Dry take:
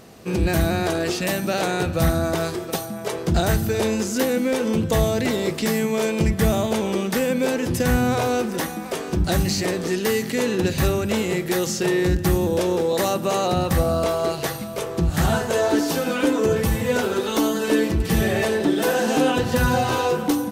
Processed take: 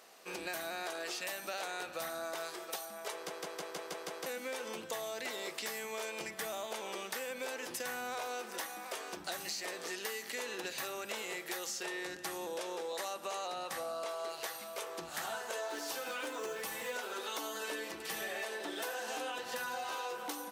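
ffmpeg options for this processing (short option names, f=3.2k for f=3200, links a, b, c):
-filter_complex "[0:a]asettb=1/sr,asplit=3[a][b][c];[a]atrim=end=11.834[d];[b]atrim=start=11.83:end=14.29,asetpts=PTS-STARTPTS,afade=t=in:d=0.004:c=qsin,afade=t=out:st=2.456:d=0.004:c=qsin,lowpass=12k[e];[c]atrim=start=14.286[f];[d][e]acrossfade=d=0.004:c1=hsin:c2=qsin[g];[g][f]acrossfade=d=0.004:c1=qsin:c2=hsin,asettb=1/sr,asplit=3[h][i][j];[h]atrim=end=15.684[k];[i]atrim=start=15.68:end=16.96,asetpts=PTS-STARTPTS,afade=t=in:d=0.004:c=qsin,afade=t=out:st=1.276:d=0.004:c=qsin,acrusher=bits=8:mode=log:mix=0:aa=0.000001[l];[j]atrim=start=16.956[m];[k][l]acrossfade=d=0.004:c1=hsin:c2=qsin[n];[n][m]acrossfade=d=0.004:c1=qsin:c2=hsin,asplit=8[o][p][q][r][s][t][u][v];[o]atrim=end=3.302[w];[p]atrim=start=3.138:end=3.302[x];[q]atrim=start=3.138:end=3.302[y];[r]atrim=start=3.138:end=3.302[z];[s]atrim=start=3.138:end=3.302[aa];[t]atrim=start=3.138:end=3.302[ab];[u]atrim=start=3.138:end=3.302[ac];[v]atrim=start=4.258[ad];[w][x]acrossfade=d=0.004:c1=hsin:c2=hsin[ae];[ae][y]acrossfade=d=0.004:c1=hsin:c2=hsin[af];[af][z]acrossfade=d=0.004:c1=hsin:c2=hsin[ag];[ag][aa]acrossfade=d=0.004:c1=hsin:c2=hsin[ah];[ah][ab]acrossfade=d=0.004:c1=hsin:c2=hsin[ai];[ai][ac]acrossfade=d=0.004:c1=hsin:c2=hsin[aj];[aj][ad]acrossfade=d=0.004:c1=hsin:c2=hsin,highpass=720,acompressor=threshold=-29dB:ratio=6,volume=-7.5dB"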